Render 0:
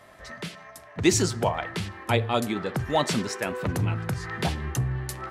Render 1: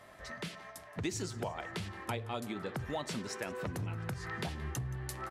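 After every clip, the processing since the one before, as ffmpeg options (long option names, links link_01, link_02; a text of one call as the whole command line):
ffmpeg -i in.wav -af "acompressor=threshold=-32dB:ratio=4,aecho=1:1:174|348|522|696:0.106|0.0561|0.0298|0.0158,volume=-4dB" out.wav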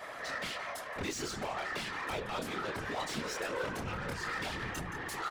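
ffmpeg -i in.wav -filter_complex "[0:a]asplit=2[link_01][link_02];[link_02]adelay=26,volume=-3.5dB[link_03];[link_01][link_03]amix=inputs=2:normalize=0,asplit=2[link_04][link_05];[link_05]highpass=frequency=720:poles=1,volume=27dB,asoftclip=type=tanh:threshold=-21dB[link_06];[link_04][link_06]amix=inputs=2:normalize=0,lowpass=frequency=4400:poles=1,volume=-6dB,afftfilt=real='hypot(re,im)*cos(2*PI*random(0))':imag='hypot(re,im)*sin(2*PI*random(1))':win_size=512:overlap=0.75,volume=-2dB" out.wav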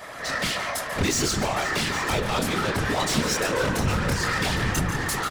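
ffmpeg -i in.wav -filter_complex "[0:a]bass=frequency=250:gain=7,treble=frequency=4000:gain=6,dynaudnorm=framelen=100:gausssize=5:maxgain=6dB,asplit=2[link_01][link_02];[link_02]aecho=0:1:141|487|811:0.224|0.168|0.211[link_03];[link_01][link_03]amix=inputs=2:normalize=0,volume=4.5dB" out.wav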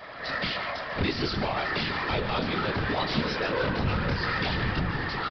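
ffmpeg -i in.wav -af "aresample=11025,aresample=44100,volume=-3dB" out.wav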